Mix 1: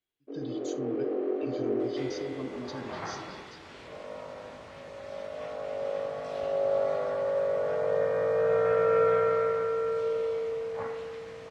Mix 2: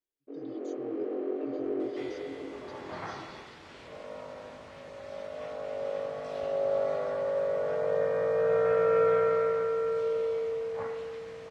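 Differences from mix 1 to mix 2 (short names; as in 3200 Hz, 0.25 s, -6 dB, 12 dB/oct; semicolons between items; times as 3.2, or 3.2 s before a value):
speech -10.0 dB; reverb: off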